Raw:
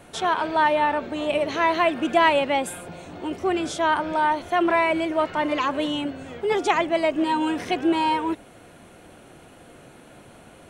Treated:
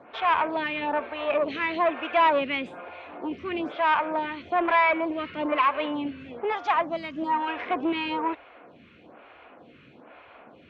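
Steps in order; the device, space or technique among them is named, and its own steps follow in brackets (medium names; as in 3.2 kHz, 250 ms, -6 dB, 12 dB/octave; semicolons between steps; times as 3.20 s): 6.50–7.48 s: fifteen-band graphic EQ 160 Hz +6 dB, 400 Hz -12 dB, 2.5 kHz -12 dB, 6.3 kHz +11 dB; vibe pedal into a guitar amplifier (lamp-driven phase shifter 1.1 Hz; valve stage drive 19 dB, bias 0.45; cabinet simulation 89–3400 Hz, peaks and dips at 110 Hz -8 dB, 170 Hz -7 dB, 360 Hz -4 dB, 1.1 kHz +5 dB, 2.4 kHz +6 dB); trim +2.5 dB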